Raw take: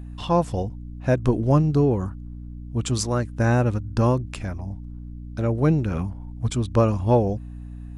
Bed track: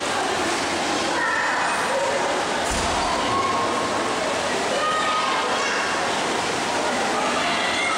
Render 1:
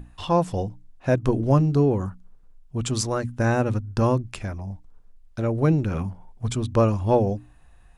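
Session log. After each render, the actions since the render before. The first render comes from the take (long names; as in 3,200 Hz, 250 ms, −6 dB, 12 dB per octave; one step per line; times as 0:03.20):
mains-hum notches 60/120/180/240/300 Hz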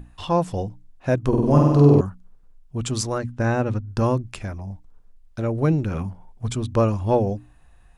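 0:01.28–0:02.01: flutter between parallel walls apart 8.3 metres, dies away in 1.3 s
0:03.18–0:03.88: high-frequency loss of the air 61 metres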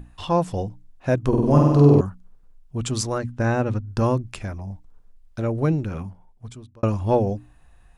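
0:05.49–0:06.83: fade out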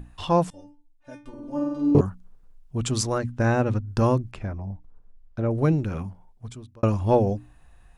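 0:00.50–0:01.95: stiff-string resonator 290 Hz, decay 0.35 s, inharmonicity 0.002
0:04.31–0:05.51: low-pass filter 1,300 Hz 6 dB per octave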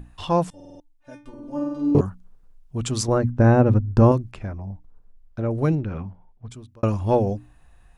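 0:00.55: stutter in place 0.05 s, 5 plays
0:03.08–0:04.12: tilt shelving filter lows +7.5 dB, about 1,500 Hz
0:05.75–0:06.51: high-frequency loss of the air 220 metres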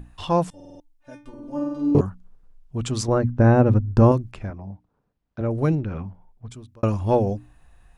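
0:02.02–0:03.56: high-shelf EQ 6,700 Hz −6.5 dB
0:04.50–0:05.41: band-pass filter 110–4,900 Hz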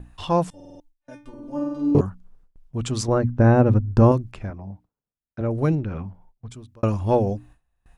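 noise gate with hold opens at −42 dBFS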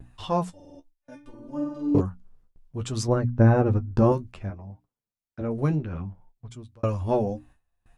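flanger 0.62 Hz, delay 7.1 ms, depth 7.2 ms, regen +35%
pitch vibrato 0.73 Hz 20 cents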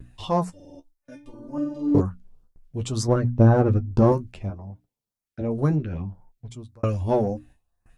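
auto-filter notch saw up 1.9 Hz 730–3,900 Hz
in parallel at −9 dB: asymmetric clip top −22 dBFS, bottom −9.5 dBFS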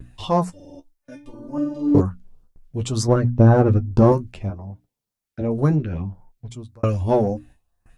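level +3.5 dB
brickwall limiter −3 dBFS, peak gain reduction 1.5 dB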